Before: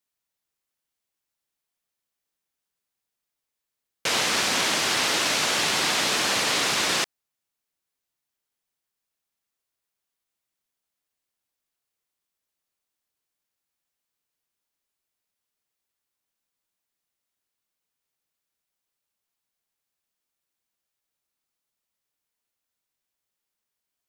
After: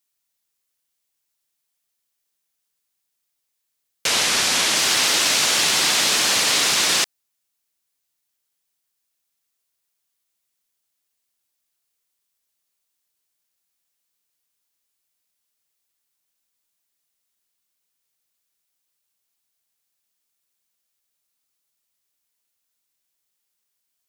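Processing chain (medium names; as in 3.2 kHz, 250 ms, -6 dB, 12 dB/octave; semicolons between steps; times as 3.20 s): 4.07–4.76 s: CVSD coder 64 kbps; treble shelf 2.8 kHz +9 dB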